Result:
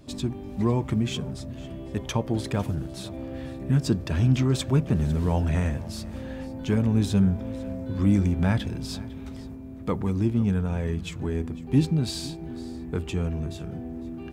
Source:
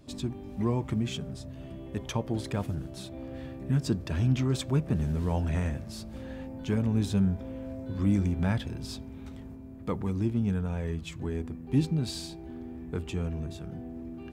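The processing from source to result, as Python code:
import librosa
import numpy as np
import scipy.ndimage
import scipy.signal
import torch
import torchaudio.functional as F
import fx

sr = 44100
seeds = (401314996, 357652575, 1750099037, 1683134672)

y = x + 10.0 ** (-19.0 / 20.0) * np.pad(x, (int(502 * sr / 1000.0), 0))[:len(x)]
y = y * librosa.db_to_amplitude(4.5)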